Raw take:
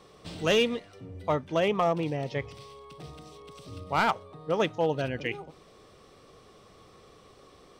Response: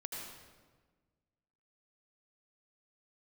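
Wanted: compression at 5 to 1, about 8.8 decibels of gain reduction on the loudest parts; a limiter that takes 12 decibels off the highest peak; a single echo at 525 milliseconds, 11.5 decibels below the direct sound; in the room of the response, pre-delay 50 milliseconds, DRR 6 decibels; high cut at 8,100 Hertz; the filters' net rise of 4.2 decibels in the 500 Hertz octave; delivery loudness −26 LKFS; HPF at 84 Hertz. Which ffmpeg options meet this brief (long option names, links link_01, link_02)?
-filter_complex "[0:a]highpass=84,lowpass=8100,equalizer=frequency=500:width_type=o:gain=5,acompressor=threshold=-27dB:ratio=5,alimiter=level_in=4.5dB:limit=-24dB:level=0:latency=1,volume=-4.5dB,aecho=1:1:525:0.266,asplit=2[link_01][link_02];[1:a]atrim=start_sample=2205,adelay=50[link_03];[link_02][link_03]afir=irnorm=-1:irlink=0,volume=-5.5dB[link_04];[link_01][link_04]amix=inputs=2:normalize=0,volume=13dB"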